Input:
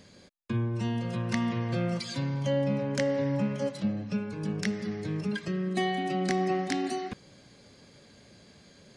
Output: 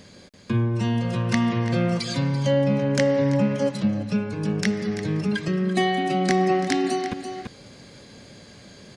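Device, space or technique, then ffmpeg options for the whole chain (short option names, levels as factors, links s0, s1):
ducked delay: -filter_complex "[0:a]asplit=3[s0][s1][s2];[s1]adelay=337,volume=0.794[s3];[s2]apad=whole_len=410342[s4];[s3][s4]sidechaincompress=threshold=0.01:ratio=4:attack=6.2:release=579[s5];[s0][s5]amix=inputs=2:normalize=0,volume=2.24"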